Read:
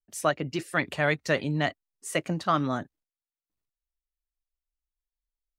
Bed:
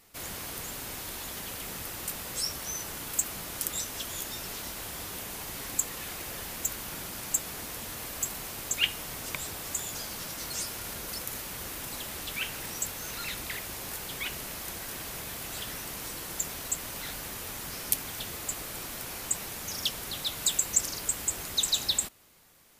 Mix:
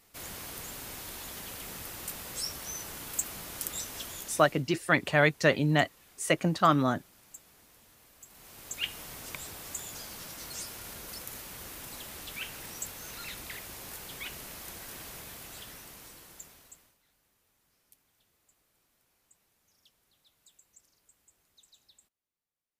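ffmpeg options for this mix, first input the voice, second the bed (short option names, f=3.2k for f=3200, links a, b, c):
-filter_complex "[0:a]adelay=4150,volume=2dB[a];[1:a]volume=12dB,afade=t=out:st=4.04:d=0.59:silence=0.133352,afade=t=in:st=8.26:d=0.73:silence=0.16788,afade=t=out:st=15.05:d=1.92:silence=0.0354813[b];[a][b]amix=inputs=2:normalize=0"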